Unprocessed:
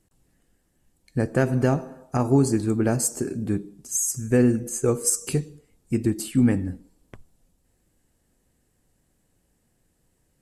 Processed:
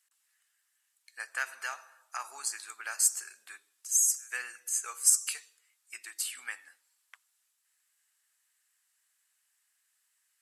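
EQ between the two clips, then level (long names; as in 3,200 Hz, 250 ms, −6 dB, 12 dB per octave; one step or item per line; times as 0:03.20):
high-pass filter 1,300 Hz 24 dB per octave
0.0 dB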